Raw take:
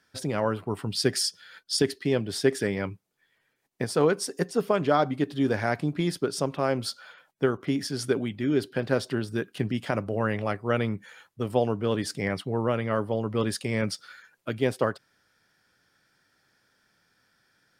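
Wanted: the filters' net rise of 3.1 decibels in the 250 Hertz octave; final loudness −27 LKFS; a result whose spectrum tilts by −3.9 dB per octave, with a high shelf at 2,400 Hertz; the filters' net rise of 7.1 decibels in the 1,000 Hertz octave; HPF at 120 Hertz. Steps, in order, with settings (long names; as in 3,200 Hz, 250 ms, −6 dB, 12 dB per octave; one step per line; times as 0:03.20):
high-pass filter 120 Hz
parametric band 250 Hz +3.5 dB
parametric band 1,000 Hz +8 dB
high-shelf EQ 2,400 Hz +7.5 dB
level −3 dB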